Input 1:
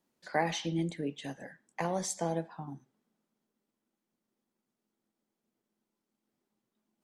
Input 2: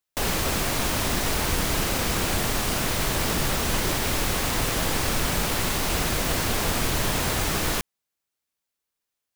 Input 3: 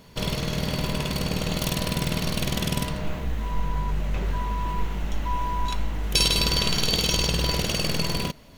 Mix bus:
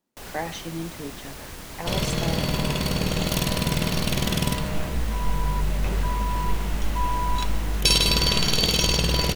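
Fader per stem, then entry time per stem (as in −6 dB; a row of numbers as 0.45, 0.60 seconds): −0.5, −14.5, +2.0 decibels; 0.00, 0.00, 1.70 seconds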